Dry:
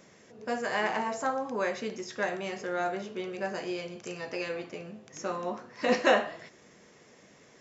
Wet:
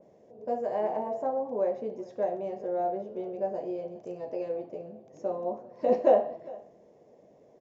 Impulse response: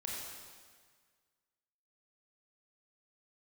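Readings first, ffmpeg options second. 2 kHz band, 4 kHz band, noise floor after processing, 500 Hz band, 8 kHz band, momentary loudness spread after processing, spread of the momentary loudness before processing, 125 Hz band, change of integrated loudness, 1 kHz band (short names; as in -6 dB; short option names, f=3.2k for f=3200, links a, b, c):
under -20 dB, under -20 dB, -59 dBFS, +3.5 dB, n/a, 16 LU, 14 LU, -4.0 dB, +1.0 dB, -1.0 dB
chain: -af "firequalizer=gain_entry='entry(190,0);entry(620,10);entry(1300,-16)':delay=0.05:min_phase=1,aecho=1:1:403:0.0891,aresample=16000,aresample=44100,adynamicequalizer=threshold=0.00501:dfrequency=3000:dqfactor=0.7:tfrequency=3000:tqfactor=0.7:attack=5:release=100:ratio=0.375:range=3:mode=cutabove:tftype=highshelf,volume=-4dB"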